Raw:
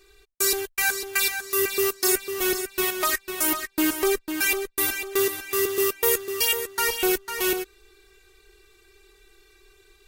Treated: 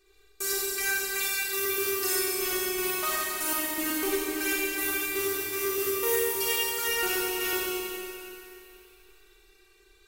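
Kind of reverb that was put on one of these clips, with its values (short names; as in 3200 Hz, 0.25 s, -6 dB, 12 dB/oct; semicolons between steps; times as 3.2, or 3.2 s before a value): Schroeder reverb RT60 2.8 s, combs from 30 ms, DRR -5.5 dB; gain -10 dB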